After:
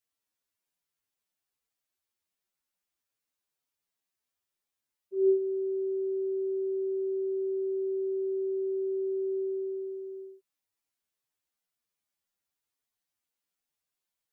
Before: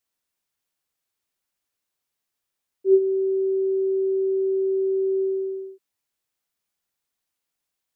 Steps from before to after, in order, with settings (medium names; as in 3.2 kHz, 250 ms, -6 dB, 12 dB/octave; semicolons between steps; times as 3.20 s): time stretch by phase-locked vocoder 1.8×; dynamic bell 350 Hz, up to -4 dB, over -34 dBFS; trim -5 dB